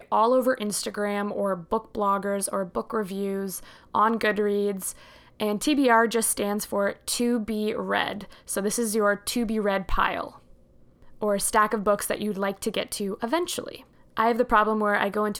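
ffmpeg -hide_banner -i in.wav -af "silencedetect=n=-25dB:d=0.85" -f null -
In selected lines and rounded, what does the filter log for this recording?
silence_start: 10.27
silence_end: 11.23 | silence_duration: 0.96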